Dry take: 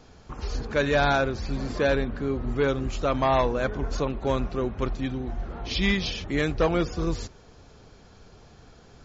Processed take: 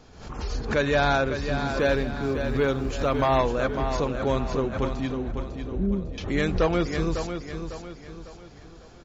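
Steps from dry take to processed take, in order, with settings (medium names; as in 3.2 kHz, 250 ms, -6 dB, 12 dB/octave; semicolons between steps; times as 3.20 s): 1.66–3.38 s: short-mantissa float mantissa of 6-bit; 5.31–6.18 s: steep low-pass 630 Hz 96 dB/octave; on a send: feedback delay 551 ms, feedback 41%, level -8 dB; on the sum: swell ahead of each attack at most 89 dB/s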